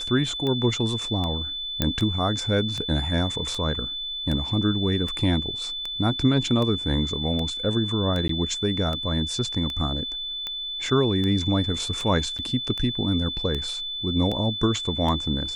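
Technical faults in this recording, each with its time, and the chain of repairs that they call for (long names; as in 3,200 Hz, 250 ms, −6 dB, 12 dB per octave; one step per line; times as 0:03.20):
scratch tick 78 rpm −17 dBFS
whistle 3,500 Hz −29 dBFS
0:01.82: click −7 dBFS
0:08.28–0:08.29: drop-out 13 ms
0:12.38–0:12.39: drop-out 7.7 ms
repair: click removal
notch filter 3,500 Hz, Q 30
repair the gap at 0:08.28, 13 ms
repair the gap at 0:12.38, 7.7 ms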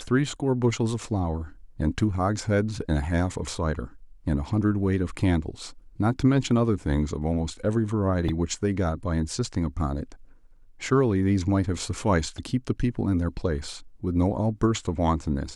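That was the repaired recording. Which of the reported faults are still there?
none of them is left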